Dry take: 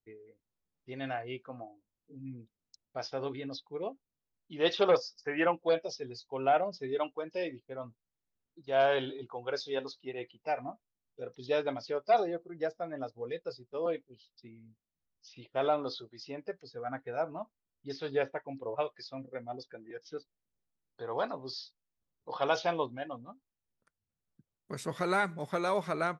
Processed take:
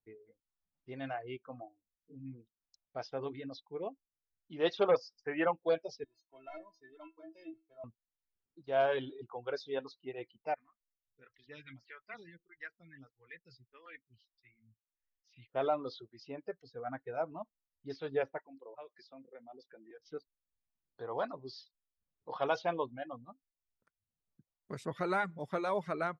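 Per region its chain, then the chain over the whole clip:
6.04–7.84 sample leveller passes 1 + metallic resonator 320 Hz, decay 0.33 s, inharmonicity 0.008
10.54–15.5 EQ curve 110 Hz 0 dB, 290 Hz -12 dB, 680 Hz -28 dB, 1900 Hz +9 dB, 3400 Hz -1 dB + photocell phaser 1.6 Hz
18.4–20 HPF 190 Hz 24 dB/oct + compressor 2:1, threshold -53 dBFS
whole clip: reverb removal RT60 0.6 s; high shelf 4200 Hz -11.5 dB; gain -2 dB

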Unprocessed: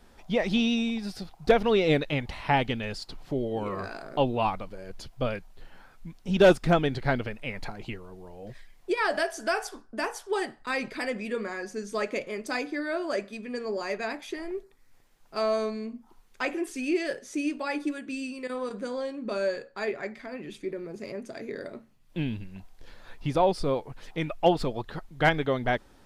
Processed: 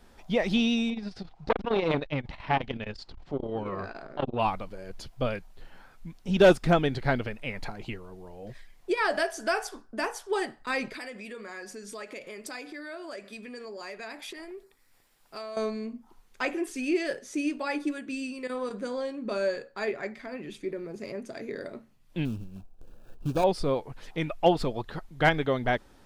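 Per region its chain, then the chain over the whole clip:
0.9–4.39 air absorption 120 m + core saturation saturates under 720 Hz
10.94–15.57 notch 6300 Hz, Q 9.1 + compressor 4:1, threshold -37 dBFS + tilt +1.5 dB/oct
22.25–23.44 median filter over 41 samples + Butterworth band-stop 2000 Hz, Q 3 + high shelf 6600 Hz +9.5 dB
whole clip: dry

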